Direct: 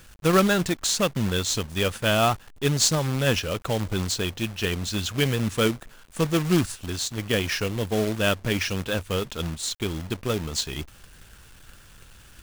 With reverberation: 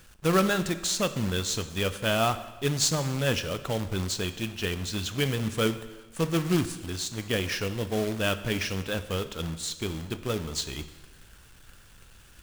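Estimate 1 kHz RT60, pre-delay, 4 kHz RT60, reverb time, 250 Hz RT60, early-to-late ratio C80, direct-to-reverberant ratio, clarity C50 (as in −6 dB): 1.2 s, 7 ms, 1.1 s, 1.2 s, 1.2 s, 14.5 dB, 11.0 dB, 13.0 dB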